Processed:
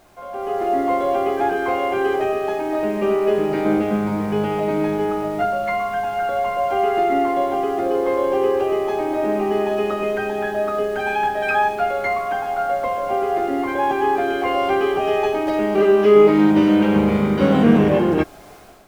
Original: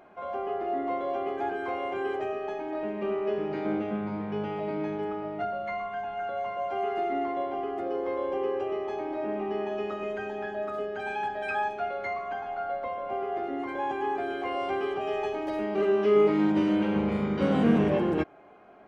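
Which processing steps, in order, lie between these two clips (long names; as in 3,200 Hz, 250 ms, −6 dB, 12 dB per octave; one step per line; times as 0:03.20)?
background noise pink −57 dBFS
automatic gain control gain up to 11 dB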